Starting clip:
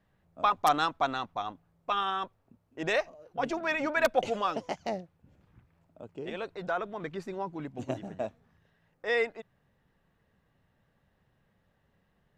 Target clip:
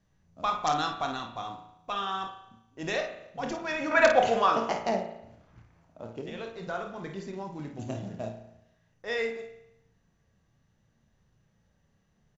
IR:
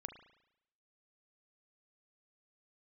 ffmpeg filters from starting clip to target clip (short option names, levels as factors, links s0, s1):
-filter_complex "[0:a]bass=f=250:g=7,treble=f=4000:g=9,aecho=1:1:26|53:0.316|0.376[s0];[1:a]atrim=start_sample=2205[s1];[s0][s1]afir=irnorm=-1:irlink=0,acrusher=bits=6:mode=log:mix=0:aa=0.000001,asettb=1/sr,asplit=3[s2][s3][s4];[s2]atrim=end=3.914[s5];[s3]atrim=start=3.91:end=6.22,asetpts=PTS-STARTPTS,afade=t=in:d=0.004:c=qsin,afade=t=out:st=2.306:d=0.004:c=qsin,equalizer=f=1100:w=0.39:g=10.5[s6];[s4]atrim=start=6.216[s7];[s5][s6]acrossfade=d=0.004:c1=hsin:c2=qsin[s8];[s8][s7]acrossfade=d=0.004:c1=qsin:c2=hsin" -ar 24000 -c:a mp2 -b:a 96k